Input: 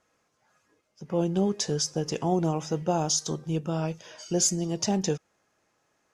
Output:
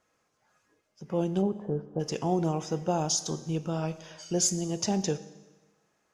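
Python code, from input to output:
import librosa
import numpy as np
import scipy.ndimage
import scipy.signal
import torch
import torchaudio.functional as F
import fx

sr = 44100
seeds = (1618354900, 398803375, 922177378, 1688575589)

y = fx.lowpass(x, sr, hz=1100.0, slope=24, at=(1.41, 1.99), fade=0.02)
y = fx.rev_schroeder(y, sr, rt60_s=1.2, comb_ms=30, drr_db=14.0)
y = y * librosa.db_to_amplitude(-2.0)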